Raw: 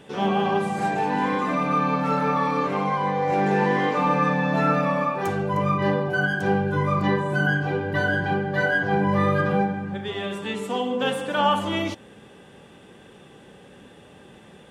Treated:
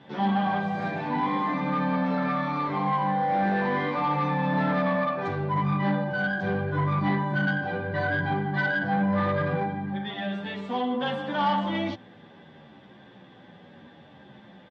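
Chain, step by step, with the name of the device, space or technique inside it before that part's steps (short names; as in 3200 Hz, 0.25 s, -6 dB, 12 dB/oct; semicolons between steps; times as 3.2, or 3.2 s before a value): bell 390 Hz -3 dB 0.77 oct; barber-pole flanger into a guitar amplifier (endless flanger 10.7 ms -0.71 Hz; soft clip -21 dBFS, distortion -16 dB; speaker cabinet 110–4000 Hz, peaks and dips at 440 Hz -9 dB, 1300 Hz -5 dB, 2700 Hz -10 dB); gain +4 dB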